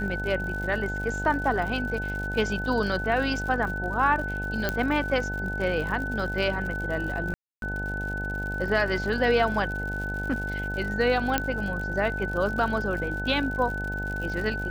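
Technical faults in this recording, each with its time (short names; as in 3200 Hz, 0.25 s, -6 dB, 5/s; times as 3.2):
buzz 50 Hz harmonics 18 -33 dBFS
crackle 110/s -34 dBFS
tone 1500 Hz -31 dBFS
4.69 pop -11 dBFS
7.34–7.62 gap 0.282 s
11.38 pop -8 dBFS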